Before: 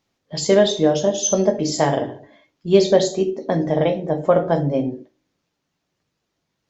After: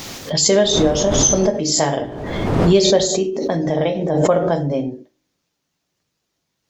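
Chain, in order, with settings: 0.62–3.06 s: wind noise 410 Hz -27 dBFS; treble shelf 4.4 kHz +9.5 dB; swell ahead of each attack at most 34 dB/s; trim -1 dB

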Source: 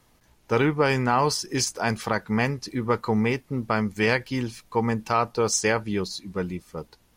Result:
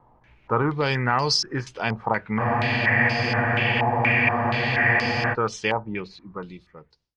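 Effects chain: fade out at the end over 1.74 s; in parallel at 0 dB: compression, threshold -35 dBFS, peak gain reduction 17 dB; on the sum: hard clipper -10.5 dBFS, distortion -32 dB; on a send at -21.5 dB: reverberation, pre-delay 3 ms; on the sum: spectral freeze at 2.42 s, 2.90 s; step-sequenced low-pass 4.2 Hz 900–5000 Hz; trim -4.5 dB

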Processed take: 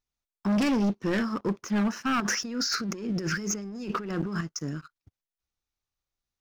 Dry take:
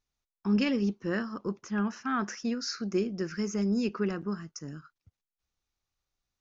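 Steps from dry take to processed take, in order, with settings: 2.20–4.41 s: compressor with a negative ratio -39 dBFS, ratio -1; waveshaping leveller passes 2; hard clipper -22 dBFS, distortion -16 dB

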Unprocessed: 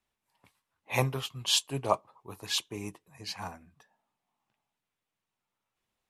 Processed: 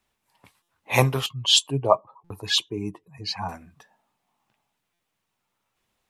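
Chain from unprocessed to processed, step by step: 1.26–3.49 s: spectral contrast enhancement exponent 1.7; buffer glitch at 0.62/2.24/4.93 s, samples 256, times 10; trim +8.5 dB

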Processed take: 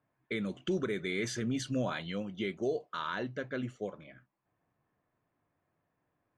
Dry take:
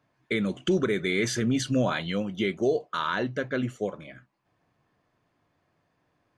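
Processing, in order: level-controlled noise filter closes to 2.3 kHz, open at -22 dBFS; trim -8 dB

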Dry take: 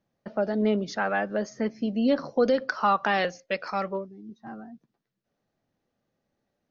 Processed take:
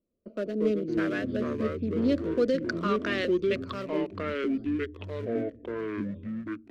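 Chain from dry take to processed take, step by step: local Wiener filter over 25 samples; ever faster or slower copies 109 ms, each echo -5 st, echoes 3; static phaser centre 340 Hz, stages 4

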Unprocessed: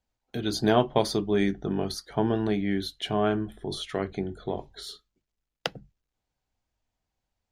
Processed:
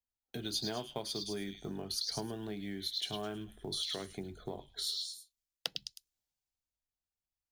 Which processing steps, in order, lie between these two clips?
dynamic bell 4 kHz, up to +5 dB, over -49 dBFS, Q 1.3; on a send: repeats whose band climbs or falls 105 ms, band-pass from 4 kHz, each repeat 0.7 oct, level -1 dB; on the sum: compression 5:1, threshold -34 dBFS, peak gain reduction 16.5 dB; in parallel at -12 dB: short-mantissa float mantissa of 2-bit; on the sum: treble shelf 5.1 kHz +12 dB; three bands expanded up and down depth 40%; trim -6 dB

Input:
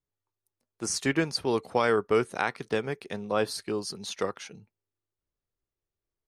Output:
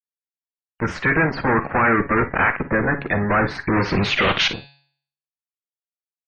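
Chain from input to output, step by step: coarse spectral quantiser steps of 30 dB; 3.73–4.48 s: waveshaping leveller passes 5; fuzz box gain 39 dB, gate -48 dBFS; de-hum 140.1 Hz, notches 35; low-pass sweep 1.8 kHz -> 4.6 kHz, 3.73–4.80 s; spectral gate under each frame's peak -25 dB strong; bass shelf 250 Hz +4.5 dB; band-stop 420 Hz, Q 12; multi-tap echo 44/56 ms -14.5/-15.5 dB; trim -5 dB

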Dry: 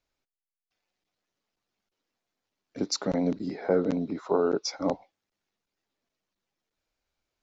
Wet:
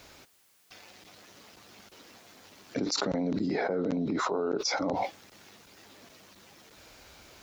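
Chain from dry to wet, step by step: high-pass 55 Hz; level flattener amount 100%; trim -8.5 dB

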